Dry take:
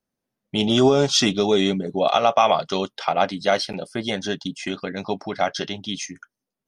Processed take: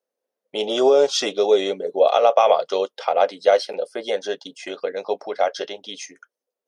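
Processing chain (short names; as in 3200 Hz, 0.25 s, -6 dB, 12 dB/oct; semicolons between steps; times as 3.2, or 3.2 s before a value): resonant high-pass 490 Hz, resonance Q 4.9; gain -4 dB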